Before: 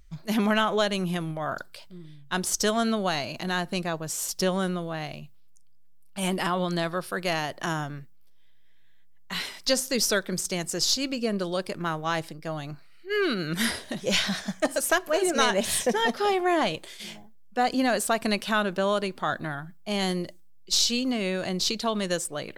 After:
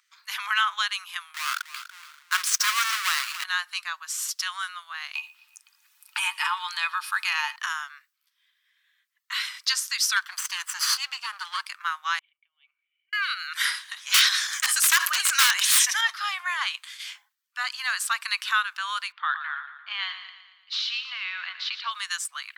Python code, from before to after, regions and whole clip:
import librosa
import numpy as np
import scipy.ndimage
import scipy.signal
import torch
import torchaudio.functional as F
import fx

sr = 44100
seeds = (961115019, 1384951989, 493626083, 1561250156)

y = fx.chain(x, sr, fx.halfwave_hold(),
    fx.peak_eq(hz=780.0, db=-8.0, octaves=0.41),
    fx.echo_feedback(ms=287, feedback_pct=29, wet_db=-13), at=(1.34, 3.44))
y = fx.chain(y, sr, fx.small_body(hz=(370.0, 890.0, 2500.0), ring_ms=95, db=17),
    fx.echo_feedback(ms=117, feedback_pct=43, wet_db=-23),
    fx.band_squash(depth_pct=70), at=(5.15, 7.56))
y = fx.chain(y, sr, fx.lower_of_two(delay_ms=0.66),
    fx.peak_eq(hz=480.0, db=14.0, octaves=0.9), at=(10.16, 11.66))
y = fx.chain(y, sr, fx.over_compress(threshold_db=-36.0, ratio=-0.5),
    fx.formant_cascade(vowel='i'),
    fx.peak_eq(hz=2100.0, db=-5.5, octaves=2.4), at=(12.19, 13.13))
y = fx.chain(y, sr, fx.high_shelf(hz=3000.0, db=9.5),
    fx.overflow_wrap(gain_db=12.0),
    fx.sustainer(db_per_s=45.0), at=(14.14, 16.01))
y = fx.chain(y, sr, fx.lowpass(hz=3500.0, slope=24),
    fx.echo_feedback(ms=115, feedback_pct=54, wet_db=-10.5), at=(19.12, 21.91))
y = scipy.signal.sosfilt(scipy.signal.butter(8, 1100.0, 'highpass', fs=sr, output='sos'), y)
y = fx.high_shelf(y, sr, hz=6200.0, db=-6.0)
y = y * 10.0 ** (4.5 / 20.0)